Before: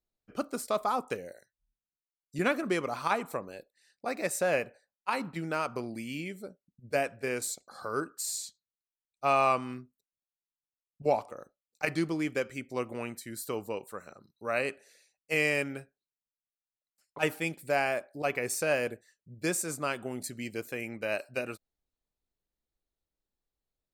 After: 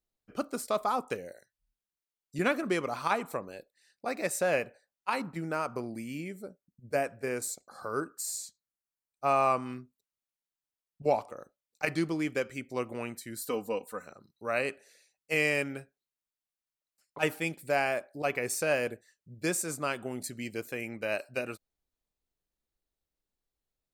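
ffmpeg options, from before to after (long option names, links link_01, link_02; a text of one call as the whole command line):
ffmpeg -i in.wav -filter_complex "[0:a]asettb=1/sr,asplit=3[link_01][link_02][link_03];[link_01]atrim=end=5.224[link_04];[link_02]atrim=start=5.22:end=9.66,asetpts=PTS-STARTPTS,afade=type=in:duration=0.004:curve=qsin,afade=type=out:start_time=4.436:duration=0.004:curve=qsin,equalizer=frequency=3300:width=1.4:gain=-8.5[link_05];[link_03]atrim=start=9.656[link_06];[link_04][link_05]acrossfade=duration=0.004:curve1=hsin:curve2=qsin[link_07];[link_07][link_06]acrossfade=duration=0.004:curve1=qsin:curve2=hsin,asettb=1/sr,asplit=3[link_08][link_09][link_10];[link_08]atrim=end=13.414[link_11];[link_09]atrim=start=13.41:end=14.06,asetpts=PTS-STARTPTS,afade=type=in:duration=0.004:curve=qsin,afade=type=out:start_time=0.646:duration=0.004:curve=qsin,aecho=1:1:4:0.69,atrim=end_sample=28665[link_12];[link_10]atrim=start=14.056[link_13];[link_11][link_12]acrossfade=duration=0.004:curve1=hsin:curve2=qsin[link_14];[link_14][link_13]acrossfade=duration=0.004:curve1=qsin:curve2=hsin" out.wav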